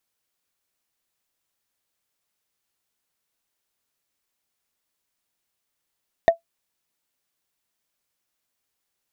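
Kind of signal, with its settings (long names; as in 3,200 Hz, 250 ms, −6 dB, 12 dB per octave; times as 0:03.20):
struck wood, lowest mode 670 Hz, decay 0.12 s, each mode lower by 10 dB, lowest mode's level −6 dB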